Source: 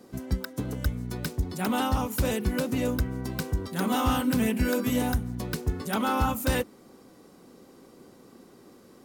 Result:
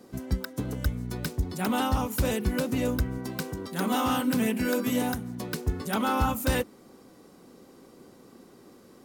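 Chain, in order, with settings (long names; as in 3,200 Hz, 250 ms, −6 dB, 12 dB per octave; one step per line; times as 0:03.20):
0:03.18–0:05.67: high-pass filter 150 Hz 12 dB per octave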